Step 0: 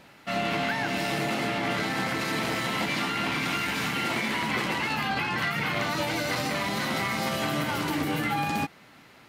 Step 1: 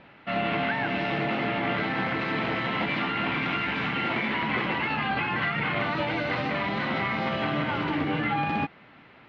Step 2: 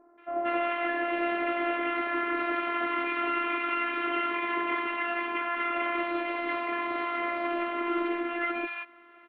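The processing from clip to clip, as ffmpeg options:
ffmpeg -i in.wav -af "lowpass=frequency=3200:width=0.5412,lowpass=frequency=3200:width=1.3066,volume=1dB" out.wav
ffmpeg -i in.wav -filter_complex "[0:a]highpass=frequency=250:width=0.5412,highpass=frequency=250:width=1.3066,equalizer=frequency=340:width_type=q:width=4:gain=3,equalizer=frequency=550:width_type=q:width=4:gain=3,equalizer=frequency=1200:width_type=q:width=4:gain=8,lowpass=frequency=3100:width=0.5412,lowpass=frequency=3100:width=1.3066,afftfilt=real='hypot(re,im)*cos(PI*b)':imag='0':win_size=512:overlap=0.75,acrossover=split=1000[link_01][link_02];[link_02]adelay=180[link_03];[link_01][link_03]amix=inputs=2:normalize=0" out.wav

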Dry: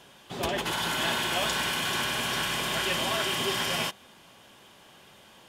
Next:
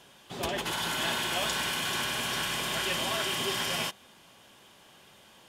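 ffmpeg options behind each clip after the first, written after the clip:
ffmpeg -i in.wav -af "equalizer=frequency=9100:width=0.37:gain=2.5,volume=-3dB" out.wav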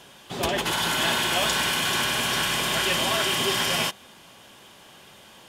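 ffmpeg -i in.wav -af "volume=21dB,asoftclip=hard,volume=-21dB,acontrast=72" out.wav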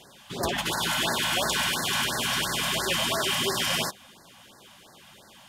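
ffmpeg -i in.wav -af "afftfilt=real='re*(1-between(b*sr/1024,350*pow(2900/350,0.5+0.5*sin(2*PI*2.9*pts/sr))/1.41,350*pow(2900/350,0.5+0.5*sin(2*PI*2.9*pts/sr))*1.41))':imag='im*(1-between(b*sr/1024,350*pow(2900/350,0.5+0.5*sin(2*PI*2.9*pts/sr))/1.41,350*pow(2900/350,0.5+0.5*sin(2*PI*2.9*pts/sr))*1.41))':win_size=1024:overlap=0.75,volume=-1.5dB" out.wav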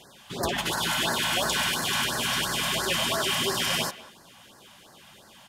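ffmpeg -i in.wav -filter_complex "[0:a]asplit=2[link_01][link_02];[link_02]adelay=190,highpass=300,lowpass=3400,asoftclip=type=hard:threshold=-24dB,volume=-16dB[link_03];[link_01][link_03]amix=inputs=2:normalize=0" out.wav

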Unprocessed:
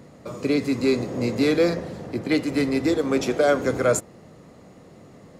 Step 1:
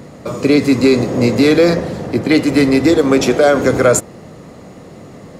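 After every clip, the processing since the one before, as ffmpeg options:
ffmpeg -i in.wav -af "alimiter=level_in=12.5dB:limit=-1dB:release=50:level=0:latency=1,volume=-1dB" out.wav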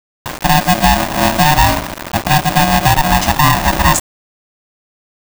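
ffmpeg -i in.wav -af "aeval=exprs='val(0)*gte(abs(val(0)),0.1)':channel_layout=same,aeval=exprs='val(0)*sgn(sin(2*PI*450*n/s))':channel_layout=same" out.wav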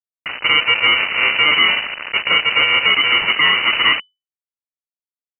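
ffmpeg -i in.wav -af "asoftclip=type=tanh:threshold=-6dB,lowpass=frequency=2600:width_type=q:width=0.5098,lowpass=frequency=2600:width_type=q:width=0.6013,lowpass=frequency=2600:width_type=q:width=0.9,lowpass=frequency=2600:width_type=q:width=2.563,afreqshift=-3000,volume=-1dB" out.wav

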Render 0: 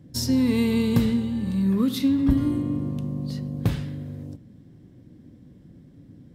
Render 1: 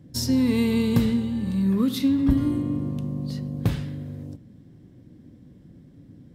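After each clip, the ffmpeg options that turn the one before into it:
ffmpeg -i in.wav -af anull out.wav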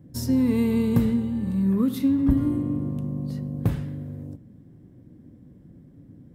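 ffmpeg -i in.wav -af "equalizer=frequency=4200:width_type=o:width=1.9:gain=-10.5" out.wav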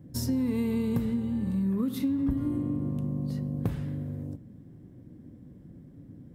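ffmpeg -i in.wav -af "acompressor=threshold=-27dB:ratio=3" out.wav

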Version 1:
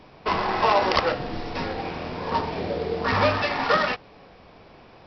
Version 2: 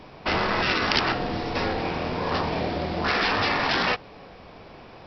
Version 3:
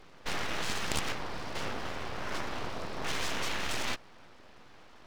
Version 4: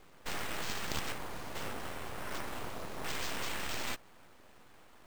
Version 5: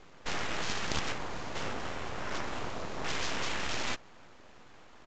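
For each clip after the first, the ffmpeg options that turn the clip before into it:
ffmpeg -i in.wav -af "afftfilt=real='re*lt(hypot(re,im),0.224)':imag='im*lt(hypot(re,im),0.224)':win_size=1024:overlap=0.75,volume=4dB" out.wav
ffmpeg -i in.wav -af "aeval=exprs='abs(val(0))':channel_layout=same,volume=-7.5dB" out.wav
ffmpeg -i in.wav -af "acrusher=samples=4:mix=1:aa=0.000001,volume=-4dB" out.wav
ffmpeg -i in.wav -af "aresample=16000,aresample=44100,volume=4dB" out.wav

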